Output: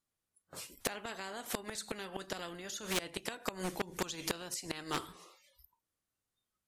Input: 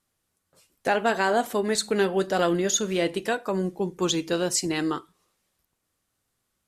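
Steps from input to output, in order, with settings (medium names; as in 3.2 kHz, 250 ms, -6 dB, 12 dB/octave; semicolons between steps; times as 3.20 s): spectral noise reduction 27 dB; inverted gate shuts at -17 dBFS, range -25 dB; overload inside the chain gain 25 dB; spectrum-flattening compressor 2:1; trim +8 dB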